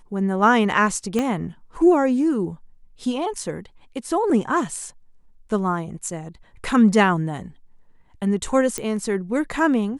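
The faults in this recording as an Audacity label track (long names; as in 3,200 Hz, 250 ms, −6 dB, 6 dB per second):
1.190000	1.190000	click −10 dBFS
8.780000	8.780000	click −11 dBFS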